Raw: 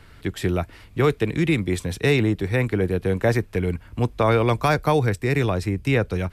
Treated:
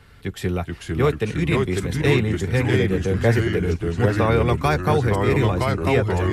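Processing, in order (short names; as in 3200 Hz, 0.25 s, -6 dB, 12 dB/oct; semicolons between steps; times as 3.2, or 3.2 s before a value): notch comb 320 Hz; echoes that change speed 0.398 s, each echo -2 st, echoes 3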